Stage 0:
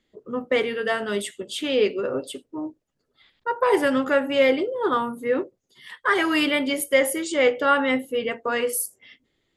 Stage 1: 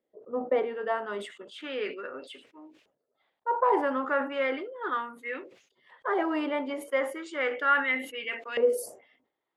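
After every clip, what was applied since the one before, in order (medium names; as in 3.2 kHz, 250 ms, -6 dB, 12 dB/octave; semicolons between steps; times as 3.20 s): dynamic bell 280 Hz, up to +8 dB, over -36 dBFS, Q 0.88; LFO band-pass saw up 0.35 Hz 550–2800 Hz; decay stretcher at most 110 dB/s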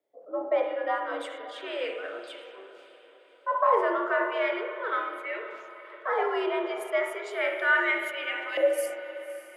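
echo that smears into a reverb 580 ms, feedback 44%, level -14.5 dB; spring tank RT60 1.2 s, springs 33/48 ms, chirp 35 ms, DRR 4.5 dB; frequency shift +80 Hz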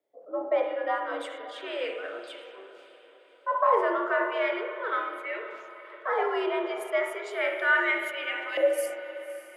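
no audible change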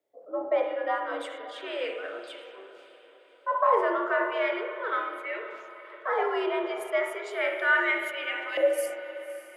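peaking EQ 110 Hz +5.5 dB 0.22 oct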